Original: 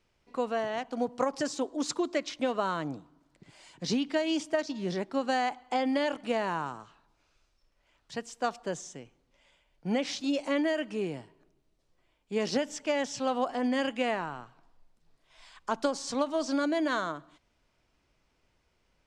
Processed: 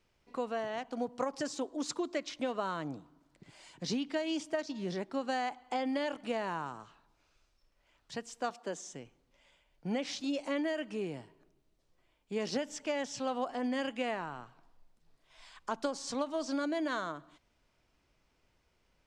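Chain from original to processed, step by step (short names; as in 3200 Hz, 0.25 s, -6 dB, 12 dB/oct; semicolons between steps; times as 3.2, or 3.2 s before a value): 8.5–8.93 steep high-pass 190 Hz; in parallel at +0.5 dB: compressor, threshold -37 dBFS, peak gain reduction 14 dB; on the sum: gain -7.5 dB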